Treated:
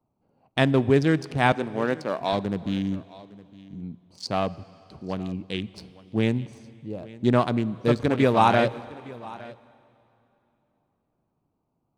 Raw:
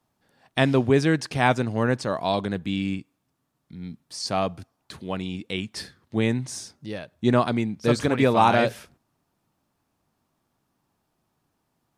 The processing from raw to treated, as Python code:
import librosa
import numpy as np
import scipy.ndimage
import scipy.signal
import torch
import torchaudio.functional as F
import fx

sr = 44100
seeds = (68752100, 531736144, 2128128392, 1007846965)

p1 = fx.wiener(x, sr, points=25)
p2 = fx.highpass(p1, sr, hz=250.0, slope=12, at=(1.52, 2.33))
p3 = p2 + fx.echo_single(p2, sr, ms=861, db=-20.5, dry=0)
y = fx.rev_plate(p3, sr, seeds[0], rt60_s=3.1, hf_ratio=0.95, predelay_ms=0, drr_db=18.5)